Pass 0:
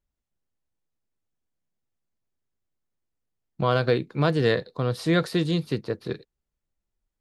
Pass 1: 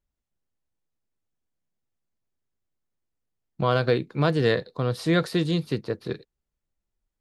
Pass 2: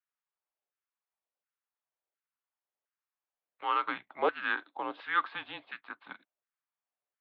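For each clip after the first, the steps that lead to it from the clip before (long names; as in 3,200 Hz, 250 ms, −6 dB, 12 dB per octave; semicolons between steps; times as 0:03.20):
no processing that can be heard
auto-filter high-pass saw down 1.4 Hz 740–1,700 Hz; single-sideband voice off tune −200 Hz 490–3,300 Hz; level −5 dB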